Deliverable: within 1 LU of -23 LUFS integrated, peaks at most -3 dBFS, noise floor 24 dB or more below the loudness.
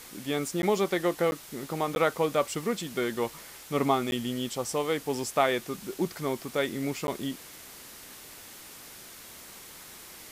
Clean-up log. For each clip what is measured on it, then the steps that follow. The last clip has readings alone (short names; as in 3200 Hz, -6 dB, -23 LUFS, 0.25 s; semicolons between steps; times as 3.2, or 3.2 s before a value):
dropouts 5; longest dropout 11 ms; noise floor -47 dBFS; noise floor target -54 dBFS; loudness -29.5 LUFS; peak -11.5 dBFS; loudness target -23.0 LUFS
-> interpolate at 0.62/1.31/1.95/4.11/7.07, 11 ms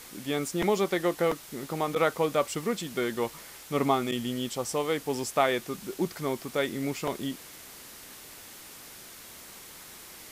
dropouts 0; noise floor -47 dBFS; noise floor target -54 dBFS
-> denoiser 7 dB, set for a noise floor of -47 dBFS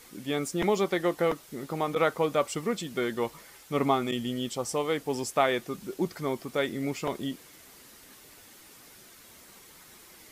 noise floor -53 dBFS; noise floor target -54 dBFS
-> denoiser 6 dB, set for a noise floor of -53 dBFS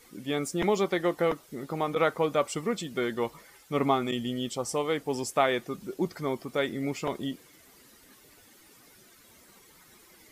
noise floor -57 dBFS; loudness -29.5 LUFS; peak -11.5 dBFS; loudness target -23.0 LUFS
-> gain +6.5 dB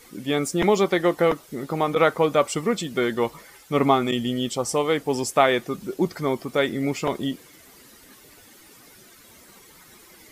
loudness -23.5 LUFS; peak -5.0 dBFS; noise floor -51 dBFS